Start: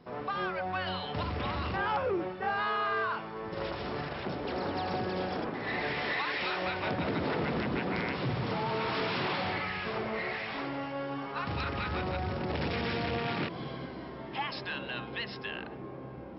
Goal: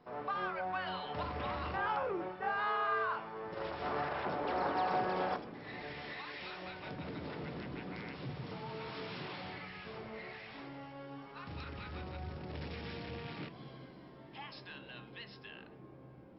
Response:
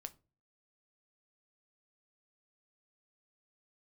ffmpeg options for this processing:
-filter_complex "[0:a]asetnsamples=n=441:p=0,asendcmd='3.82 equalizer g 13;5.36 equalizer g -4',equalizer=f=1k:t=o:w=2.8:g=7[a];[1:a]atrim=start_sample=2205[b];[a][b]afir=irnorm=-1:irlink=0,volume=-5dB"

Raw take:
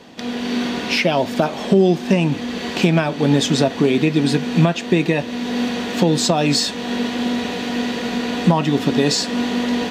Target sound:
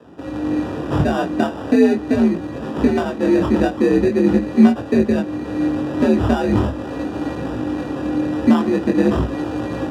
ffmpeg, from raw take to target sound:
-af "acrusher=samples=21:mix=1:aa=0.000001,flanger=delay=18:depth=7.3:speed=0.42,afreqshift=61,aemphasis=mode=reproduction:type=riaa,volume=-1.5dB"

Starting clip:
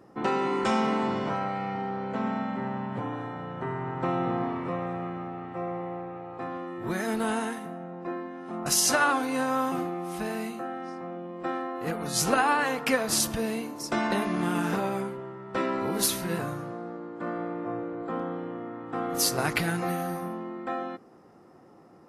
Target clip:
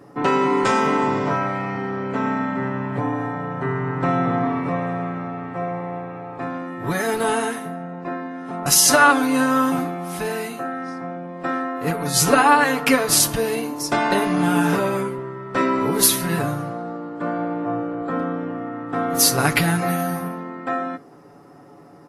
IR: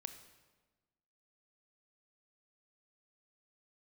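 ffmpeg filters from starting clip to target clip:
-filter_complex "[0:a]aecho=1:1:7:0.67,asplit=2[a][b];[b]equalizer=f=11k:w=2.7:g=10[c];[1:a]atrim=start_sample=2205,atrim=end_sample=3528[d];[c][d]afir=irnorm=-1:irlink=0,volume=-1dB[e];[a][e]amix=inputs=2:normalize=0,volume=3dB"

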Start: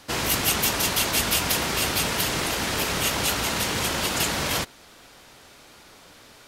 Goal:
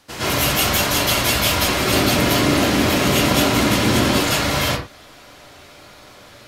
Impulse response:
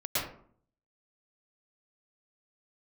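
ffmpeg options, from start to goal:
-filter_complex "[0:a]asettb=1/sr,asplit=3[a][b][c];[a]atrim=end=1.724[d];[b]atrim=start=1.72:end=4.08,asetpts=PTS-STARTPTS,afade=t=in:d=0.004:c=qsin,afade=t=out:st=2.356:d=0.004:c=qsin,equalizer=f=260:w=1:g=10[e];[c]atrim=start=4.076[f];[d][e]acrossfade=d=0.004:c1=hsin:c2=qsin[g];[g][f]acrossfade=d=0.004:c1=qsin:c2=hsin[h];[1:a]atrim=start_sample=2205,afade=t=out:st=0.28:d=0.01,atrim=end_sample=12789[i];[h][i]afir=irnorm=-1:irlink=0,volume=-1.5dB"

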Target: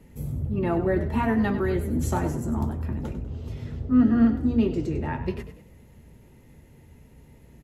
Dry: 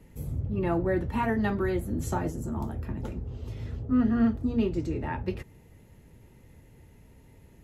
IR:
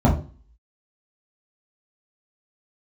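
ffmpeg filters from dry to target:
-filter_complex "[0:a]asettb=1/sr,asplit=3[a][b][c];[a]atrim=end=1.954[d];[b]atrim=start=1.95:end=2.65,asetpts=PTS-STARTPTS,afade=t=in:d=0.004:c=qsin,afade=t=out:st=0.696:d=0.004:c=qsin,aeval=exprs='0.158*(cos(1*acos(clip(val(0)/0.158,-1,1)))-cos(1*PI/2))+0.01*(cos(5*acos(clip(val(0)/0.158,-1,1)))-cos(5*PI/2))':c=same[e];[c]atrim=start=2.646[f];[d][e]acrossfade=d=0.004:c1=hsin:c2=qsin[g];[g][f]acrossfade=d=0.004:c1=qsin:c2=hsin,asplit=5[h][i][j][k][l];[i]adelay=98,afreqshift=39,volume=-12dB[m];[j]adelay=196,afreqshift=78,volume=-20.2dB[n];[k]adelay=294,afreqshift=117,volume=-28.4dB[o];[l]adelay=392,afreqshift=156,volume=-36.5dB[p];[h][m][n][o][p]amix=inputs=5:normalize=0,asplit=2[q][r];[1:a]atrim=start_sample=2205[s];[r][s]afir=irnorm=-1:irlink=0,volume=-40dB[t];[q][t]amix=inputs=2:normalize=0,volume=1.5dB"

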